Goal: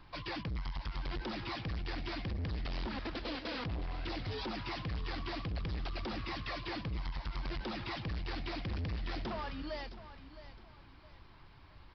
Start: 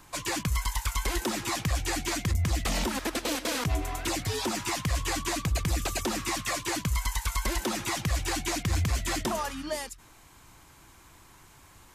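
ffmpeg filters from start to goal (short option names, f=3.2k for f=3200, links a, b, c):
-af "lowshelf=f=110:g=9,aresample=11025,asoftclip=type=tanh:threshold=-29.5dB,aresample=44100,aecho=1:1:664|1328|1992:0.2|0.0698|0.0244,volume=-5.5dB"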